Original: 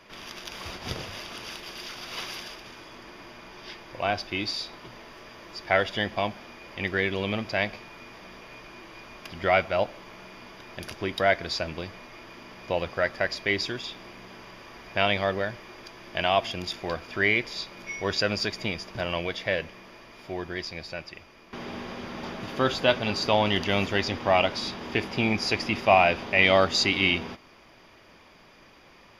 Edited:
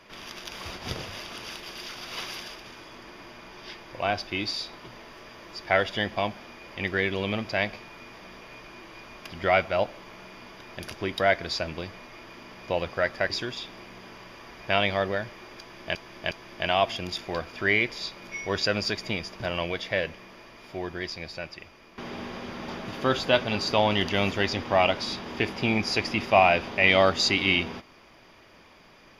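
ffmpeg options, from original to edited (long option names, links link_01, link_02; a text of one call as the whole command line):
ffmpeg -i in.wav -filter_complex "[0:a]asplit=4[link_01][link_02][link_03][link_04];[link_01]atrim=end=13.302[link_05];[link_02]atrim=start=13.568:end=16.222[link_06];[link_03]atrim=start=15.858:end=16.222[link_07];[link_04]atrim=start=15.858[link_08];[link_05][link_06]acrossfade=duration=0.004:curve1=hsin:curve2=hsin[link_09];[link_09][link_07]acrossfade=duration=0.004:curve1=hsin:curve2=hsin[link_10];[link_10][link_08]acrossfade=duration=0.004:curve1=hsin:curve2=hsin" out.wav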